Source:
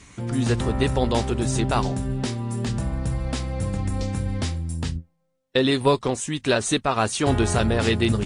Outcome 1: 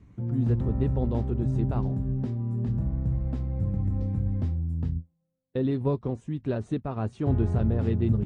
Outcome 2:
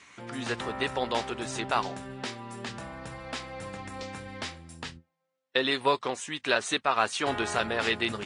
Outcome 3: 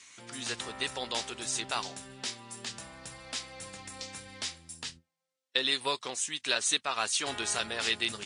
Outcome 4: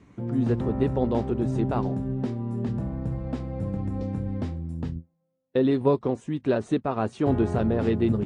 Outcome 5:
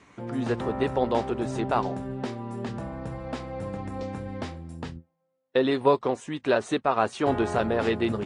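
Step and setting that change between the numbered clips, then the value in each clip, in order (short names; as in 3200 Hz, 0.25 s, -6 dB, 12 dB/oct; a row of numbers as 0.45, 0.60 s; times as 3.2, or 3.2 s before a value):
band-pass, frequency: 100, 1800, 4900, 260, 680 Hz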